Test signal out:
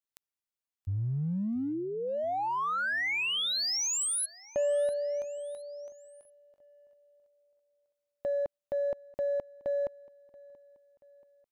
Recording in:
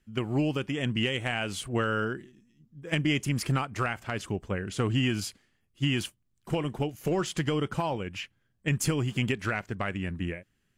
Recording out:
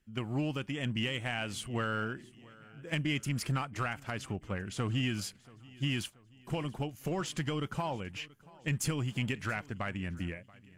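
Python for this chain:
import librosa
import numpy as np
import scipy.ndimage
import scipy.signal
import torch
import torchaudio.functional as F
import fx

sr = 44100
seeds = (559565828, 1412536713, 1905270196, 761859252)

p1 = fx.dynamic_eq(x, sr, hz=400.0, q=2.0, threshold_db=-42.0, ratio=4.0, max_db=-5)
p2 = np.clip(10.0 ** (26.0 / 20.0) * p1, -1.0, 1.0) / 10.0 ** (26.0 / 20.0)
p3 = p1 + F.gain(torch.from_numpy(p2), -7.5).numpy()
p4 = fx.echo_feedback(p3, sr, ms=681, feedback_pct=50, wet_db=-22.5)
y = F.gain(torch.from_numpy(p4), -7.0).numpy()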